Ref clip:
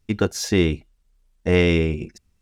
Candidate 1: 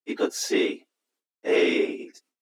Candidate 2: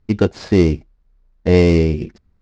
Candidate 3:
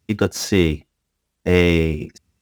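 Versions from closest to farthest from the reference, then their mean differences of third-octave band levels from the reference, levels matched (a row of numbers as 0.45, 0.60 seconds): 3, 2, 1; 2.0, 4.0, 6.0 decibels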